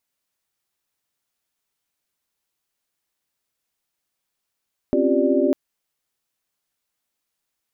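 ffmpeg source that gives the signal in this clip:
-f lavfi -i "aevalsrc='0.0794*(sin(2*PI*261.63*t)+sin(2*PI*277.18*t)+sin(2*PI*349.23*t)+sin(2*PI*392*t)+sin(2*PI*587.33*t))':d=0.6:s=44100"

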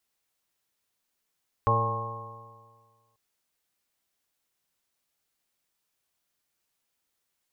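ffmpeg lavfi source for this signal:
-f lavfi -i "aevalsrc='0.0631*pow(10,-3*t/1.7)*sin(2*PI*112.11*t)+0.015*pow(10,-3*t/1.7)*sin(2*PI*224.85*t)+0.00944*pow(10,-3*t/1.7)*sin(2*PI*338.86*t)+0.0355*pow(10,-3*t/1.7)*sin(2*PI*454.76*t)+0.0316*pow(10,-3*t/1.7)*sin(2*PI*573.15*t)+0.0075*pow(10,-3*t/1.7)*sin(2*PI*694.6*t)+0.0355*pow(10,-3*t/1.7)*sin(2*PI*819.68*t)+0.0141*pow(10,-3*t/1.7)*sin(2*PI*948.91*t)+0.0891*pow(10,-3*t/1.7)*sin(2*PI*1082.79*t)':d=1.49:s=44100"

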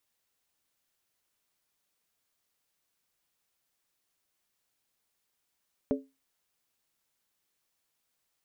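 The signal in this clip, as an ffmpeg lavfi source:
-f lavfi -i "aevalsrc='0.0708*pow(10,-3*t/0.25)*sin(2*PI*269*t)+0.0531*pow(10,-3*t/0.198)*sin(2*PI*428.8*t)+0.0398*pow(10,-3*t/0.171)*sin(2*PI*574.6*t)':d=0.63:s=44100"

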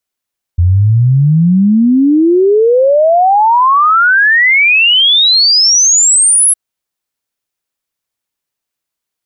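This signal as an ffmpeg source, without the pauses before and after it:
-f lavfi -i "aevalsrc='0.562*clip(min(t,5.96-t)/0.01,0,1)*sin(2*PI*84*5.96/log(11000/84)*(exp(log(11000/84)*t/5.96)-1))':d=5.96:s=44100"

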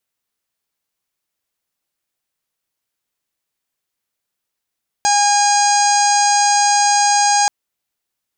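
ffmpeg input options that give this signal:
-f lavfi -i "aevalsrc='0.224*sin(2*PI*817*t)+0.0708*sin(2*PI*1634*t)+0.0422*sin(2*PI*2451*t)+0.0266*sin(2*PI*3268*t)+0.0376*sin(2*PI*4085*t)+0.0794*sin(2*PI*4902*t)+0.0355*sin(2*PI*5719*t)+0.126*sin(2*PI*6536*t)+0.0355*sin(2*PI*7353*t)+0.0398*sin(2*PI*8170*t)':d=2.43:s=44100"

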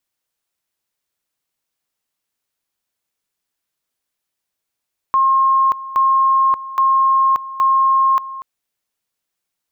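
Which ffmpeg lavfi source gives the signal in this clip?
-f lavfi -i "aevalsrc='pow(10,(-10.5-16*gte(mod(t,0.82),0.58))/20)*sin(2*PI*1070*t)':d=3.28:s=44100"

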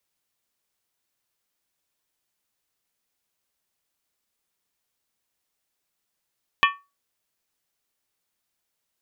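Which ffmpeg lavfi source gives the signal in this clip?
-f lavfi -i "aevalsrc='0.211*pow(10,-3*t/0.26)*sin(2*PI*1130*t)+0.168*pow(10,-3*t/0.206)*sin(2*PI*1801.2*t)+0.133*pow(10,-3*t/0.178)*sin(2*PI*2413.7*t)+0.106*pow(10,-3*t/0.172)*sin(2*PI*2594.5*t)+0.0841*pow(10,-3*t/0.16)*sin(2*PI*2997.9*t)+0.0668*pow(10,-3*t/0.152)*sin(2*PI*3297.3*t)':d=0.63:s=44100"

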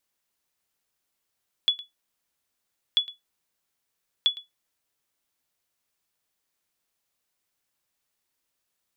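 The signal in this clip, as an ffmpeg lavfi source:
-f lavfi -i "aevalsrc='0.251*(sin(2*PI*3410*mod(t,1.29))*exp(-6.91*mod(t,1.29)/0.16)+0.112*sin(2*PI*3410*max(mod(t,1.29)-0.11,0))*exp(-6.91*max(mod(t,1.29)-0.11,0)/0.16))':d=3.87:s=44100"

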